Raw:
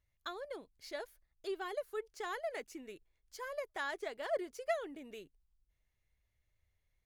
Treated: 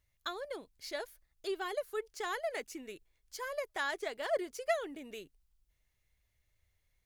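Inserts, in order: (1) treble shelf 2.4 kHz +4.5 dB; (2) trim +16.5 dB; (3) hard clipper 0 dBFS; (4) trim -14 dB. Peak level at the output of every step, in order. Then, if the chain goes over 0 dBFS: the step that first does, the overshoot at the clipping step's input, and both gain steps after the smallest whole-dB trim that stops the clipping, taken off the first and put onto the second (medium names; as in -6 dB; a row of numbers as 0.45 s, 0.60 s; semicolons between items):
-21.5 dBFS, -5.0 dBFS, -5.0 dBFS, -19.0 dBFS; nothing clips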